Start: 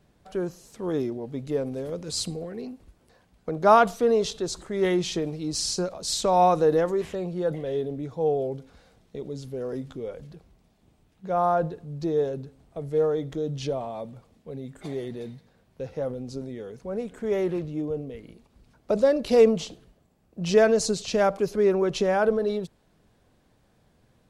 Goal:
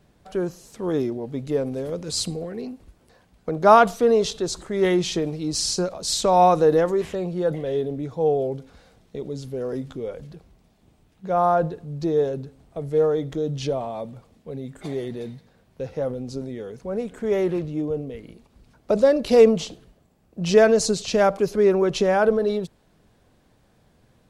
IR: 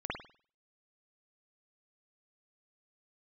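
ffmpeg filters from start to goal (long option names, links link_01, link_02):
-af "volume=3.5dB"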